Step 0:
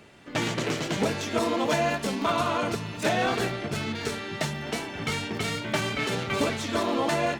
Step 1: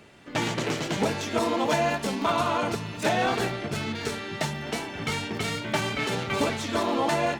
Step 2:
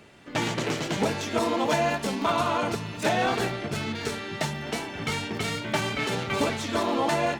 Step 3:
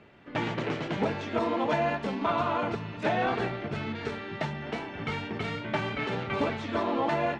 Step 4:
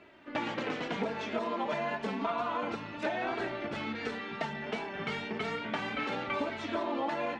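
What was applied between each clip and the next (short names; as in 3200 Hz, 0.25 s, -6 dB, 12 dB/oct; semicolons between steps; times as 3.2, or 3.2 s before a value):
dynamic EQ 860 Hz, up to +5 dB, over -43 dBFS, Q 5.2
nothing audible
LPF 2700 Hz 12 dB/oct; gain -2.5 dB
low shelf 170 Hz -10 dB; flange 0.3 Hz, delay 3 ms, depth 2.1 ms, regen +23%; compressor 4:1, threshold -34 dBFS, peak gain reduction 8 dB; gain +4 dB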